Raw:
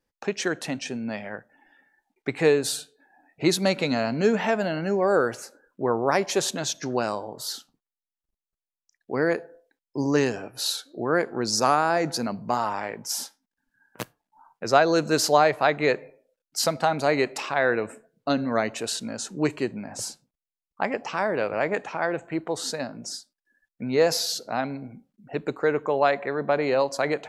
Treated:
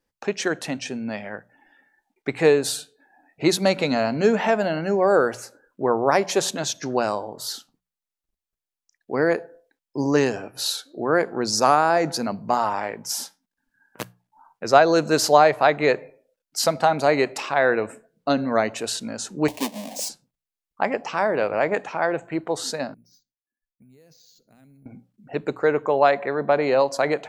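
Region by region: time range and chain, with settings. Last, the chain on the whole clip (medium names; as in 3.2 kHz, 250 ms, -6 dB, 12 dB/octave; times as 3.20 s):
19.48–20.09 s: square wave that keeps the level + high-pass 230 Hz 24 dB/octave + static phaser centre 370 Hz, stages 6
22.94–24.86 s: amplifier tone stack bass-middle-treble 10-0-1 + compression 12:1, threshold -50 dBFS + careless resampling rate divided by 4×, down filtered, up hold
whole clip: hum notches 60/120/180 Hz; dynamic bell 720 Hz, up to +3 dB, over -31 dBFS, Q 0.97; trim +1.5 dB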